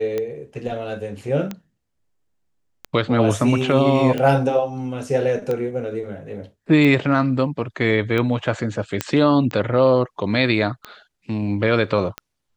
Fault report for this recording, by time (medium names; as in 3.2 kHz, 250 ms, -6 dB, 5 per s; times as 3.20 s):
tick 45 rpm -13 dBFS
9.01 s: pop -5 dBFS